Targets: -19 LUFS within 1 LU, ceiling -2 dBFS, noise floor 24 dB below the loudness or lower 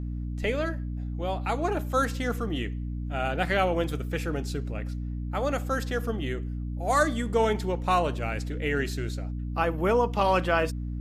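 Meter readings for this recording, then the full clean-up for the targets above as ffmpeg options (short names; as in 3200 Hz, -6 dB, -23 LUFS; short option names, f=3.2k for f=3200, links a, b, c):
hum 60 Hz; harmonics up to 300 Hz; hum level -30 dBFS; loudness -28.5 LUFS; peak -10.5 dBFS; loudness target -19.0 LUFS
-> -af "bandreject=f=60:t=h:w=6,bandreject=f=120:t=h:w=6,bandreject=f=180:t=h:w=6,bandreject=f=240:t=h:w=6,bandreject=f=300:t=h:w=6"
-af "volume=9.5dB,alimiter=limit=-2dB:level=0:latency=1"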